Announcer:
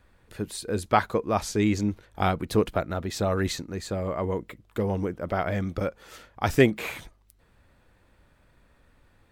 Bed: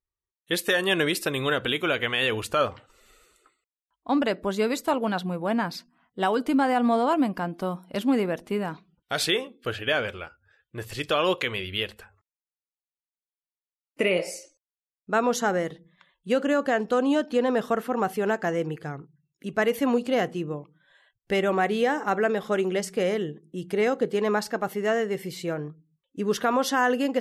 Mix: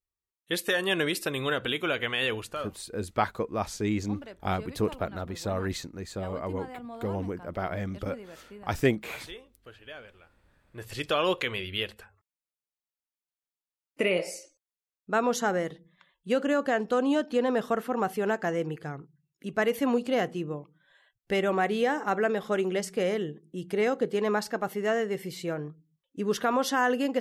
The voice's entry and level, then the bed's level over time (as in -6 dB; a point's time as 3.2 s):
2.25 s, -5.0 dB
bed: 2.31 s -3.5 dB
2.86 s -19.5 dB
10.31 s -19.5 dB
10.94 s -2.5 dB